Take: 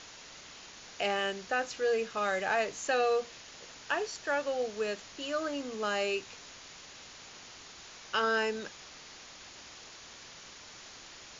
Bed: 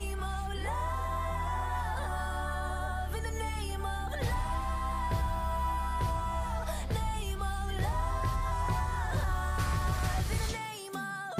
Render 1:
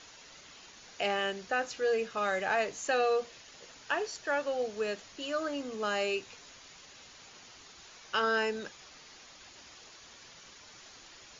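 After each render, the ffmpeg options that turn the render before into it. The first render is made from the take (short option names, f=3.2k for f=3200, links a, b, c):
-af "afftdn=nr=6:nf=-51"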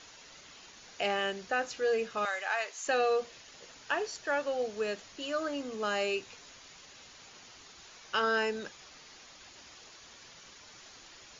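-filter_complex "[0:a]asettb=1/sr,asplit=3[a][b][c];[a]atrim=end=2.254[d];[b]atrim=start=2.25:end=2.87,asetpts=PTS-STARTPTS,afade=t=in:d=0.004:c=qsin,afade=t=out:st=0.616:d=0.004:c=qsin,highpass=880[e];[c]atrim=start=2.866[f];[d][e]acrossfade=d=0.004:c1=hsin:c2=qsin[g];[g][f]acrossfade=d=0.004:c1=qsin:c2=hsin"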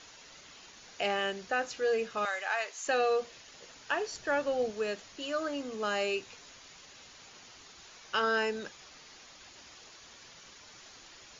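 -filter_complex "[0:a]asettb=1/sr,asplit=3[a][b][c];[a]atrim=end=4.114[d];[b]atrim=start=4.11:end=4.72,asetpts=PTS-STARTPTS,afade=t=in:d=0.004:c=qsin,afade=t=out:st=0.606:d=0.004:c=qsin,lowshelf=f=250:g=9.5[e];[c]atrim=start=4.716[f];[d][e]acrossfade=d=0.004:c1=hsin:c2=qsin[g];[g][f]acrossfade=d=0.004:c1=qsin:c2=hsin"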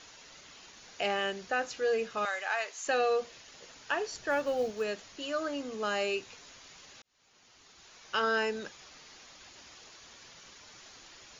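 -filter_complex "[0:a]asplit=3[a][b][c];[a]afade=t=out:st=4.29:d=0.02[d];[b]acrusher=bits=9:mode=log:mix=0:aa=0.000001,afade=t=in:st=4.29:d=0.02,afade=t=out:st=4.83:d=0.02[e];[c]afade=t=in:st=4.83:d=0.02[f];[d][e][f]amix=inputs=3:normalize=0,asplit=2[g][h];[g]atrim=end=7.02,asetpts=PTS-STARTPTS,afade=t=out:st=7.016:d=0.004:c=hsin[i];[h]atrim=start=7.02,asetpts=PTS-STARTPTS,afade=t=in:d=1.2[j];[i][j]concat=n=2:v=0:a=1"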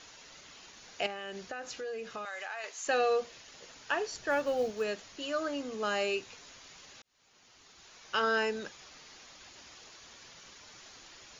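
-filter_complex "[0:a]asettb=1/sr,asplit=3[a][b][c];[a]atrim=end=1.064[d];[b]atrim=start=1.06:end=2.64,asetpts=PTS-STARTPTS,afade=t=in:d=0.004:c=qsin,afade=t=out:st=1.576:d=0.004:c=qsin,acompressor=threshold=-36dB:ratio=6:attack=3.2:release=140:knee=1:detection=peak[e];[c]atrim=start=2.636[f];[d][e]acrossfade=d=0.004:c1=hsin:c2=qsin[g];[g][f]acrossfade=d=0.004:c1=qsin:c2=hsin"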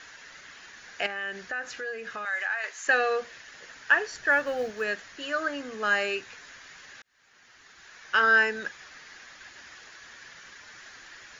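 -af "equalizer=f=1.7k:w=2:g=14.5"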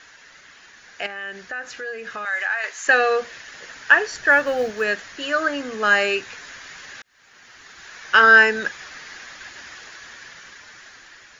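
-af "dynaudnorm=f=830:g=5:m=11.5dB"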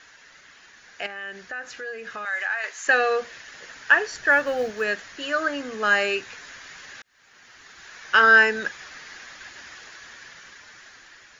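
-af "volume=-3dB"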